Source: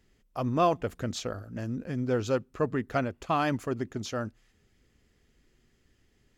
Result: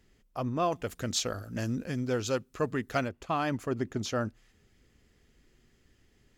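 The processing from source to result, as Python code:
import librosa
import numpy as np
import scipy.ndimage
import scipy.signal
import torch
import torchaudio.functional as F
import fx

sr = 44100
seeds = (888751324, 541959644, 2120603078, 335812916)

y = fx.high_shelf(x, sr, hz=2600.0, db=11.0, at=(0.72, 3.09))
y = fx.rider(y, sr, range_db=4, speed_s=0.5)
y = y * librosa.db_to_amplitude(-2.0)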